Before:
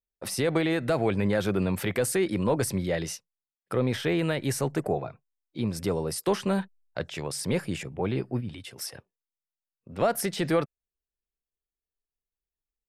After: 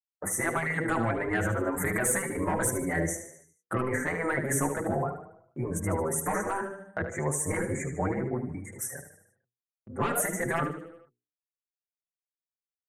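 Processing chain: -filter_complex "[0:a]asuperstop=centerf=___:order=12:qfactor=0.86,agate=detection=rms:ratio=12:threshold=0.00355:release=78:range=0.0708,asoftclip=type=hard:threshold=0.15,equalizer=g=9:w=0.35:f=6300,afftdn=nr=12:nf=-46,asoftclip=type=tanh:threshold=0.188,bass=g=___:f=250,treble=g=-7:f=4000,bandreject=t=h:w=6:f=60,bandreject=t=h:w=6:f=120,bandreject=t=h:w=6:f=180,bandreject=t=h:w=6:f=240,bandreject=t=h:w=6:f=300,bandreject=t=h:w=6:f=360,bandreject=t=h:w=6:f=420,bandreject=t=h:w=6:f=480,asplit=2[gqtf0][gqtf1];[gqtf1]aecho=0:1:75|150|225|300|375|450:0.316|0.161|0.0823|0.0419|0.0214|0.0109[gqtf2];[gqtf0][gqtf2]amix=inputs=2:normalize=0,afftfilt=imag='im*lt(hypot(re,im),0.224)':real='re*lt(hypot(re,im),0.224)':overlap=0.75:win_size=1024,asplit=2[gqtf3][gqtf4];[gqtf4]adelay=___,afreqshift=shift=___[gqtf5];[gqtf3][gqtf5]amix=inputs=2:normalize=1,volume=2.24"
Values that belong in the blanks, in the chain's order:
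3700, -1, 5.5, 1.8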